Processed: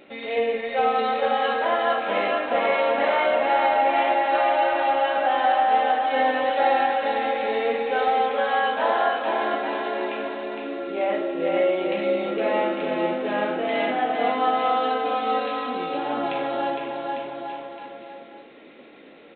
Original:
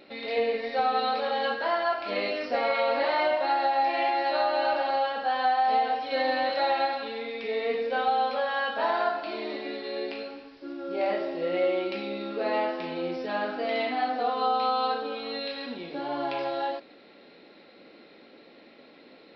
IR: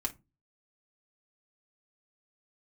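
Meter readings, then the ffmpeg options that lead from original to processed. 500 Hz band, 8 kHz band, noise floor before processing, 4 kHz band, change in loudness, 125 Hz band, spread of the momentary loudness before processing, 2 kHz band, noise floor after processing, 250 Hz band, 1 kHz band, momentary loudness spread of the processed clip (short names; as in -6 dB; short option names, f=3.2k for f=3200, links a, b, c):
+5.5 dB, n/a, -53 dBFS, +1.5 dB, +5.0 dB, +5.5 dB, 9 LU, +5.0 dB, -46 dBFS, +5.5 dB, +5.0 dB, 10 LU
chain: -af "aecho=1:1:460|851|1183|1466|1706:0.631|0.398|0.251|0.158|0.1,aresample=8000,aresample=44100,volume=3dB"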